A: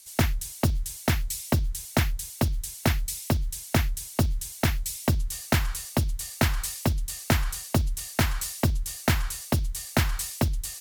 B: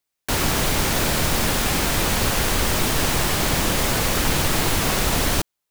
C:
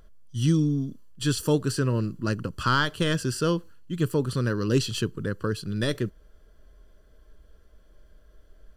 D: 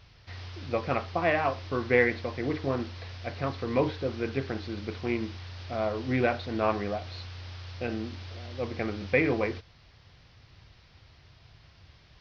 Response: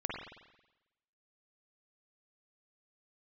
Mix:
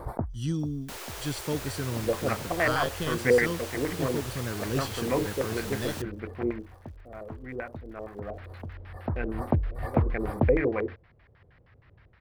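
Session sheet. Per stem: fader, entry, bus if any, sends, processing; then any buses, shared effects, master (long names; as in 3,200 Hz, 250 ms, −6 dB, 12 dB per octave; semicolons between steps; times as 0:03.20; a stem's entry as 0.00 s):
0.0 dB, 0.00 s, no send, reverb reduction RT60 1.1 s; inverse Chebyshev low-pass filter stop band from 2,600 Hz, stop band 50 dB; background raised ahead of every attack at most 76 dB per second; automatic ducking −19 dB, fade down 0.50 s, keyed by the third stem
−17.5 dB, 0.60 s, no send, Butterworth high-pass 350 Hz 48 dB per octave; upward compression, threshold −33 dBFS
−8.0 dB, 0.00 s, no send, centre clipping without the shift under −49.5 dBFS
0:06.49 −3 dB → 0:06.77 −14.5 dB → 0:08.15 −14.5 dB → 0:08.35 −3 dB, 1.35 s, no send, auto-filter low-pass square 6.4 Hz 470–1,800 Hz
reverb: not used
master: no processing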